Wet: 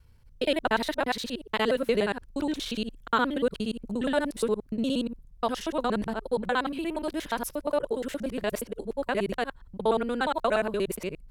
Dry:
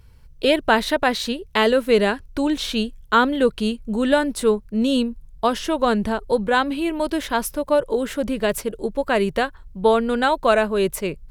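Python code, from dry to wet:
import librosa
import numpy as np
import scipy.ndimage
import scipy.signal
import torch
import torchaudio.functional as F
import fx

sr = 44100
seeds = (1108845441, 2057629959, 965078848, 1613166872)

y = fx.local_reverse(x, sr, ms=59.0)
y = F.gain(torch.from_numpy(y), -8.0).numpy()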